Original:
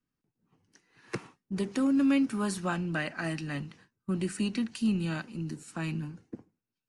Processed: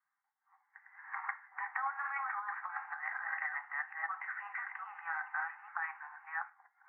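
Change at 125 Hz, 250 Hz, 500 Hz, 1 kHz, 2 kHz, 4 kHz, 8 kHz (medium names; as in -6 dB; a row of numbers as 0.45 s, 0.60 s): under -40 dB, under -40 dB, under -25 dB, +3.5 dB, +2.5 dB, under -30 dB, under -35 dB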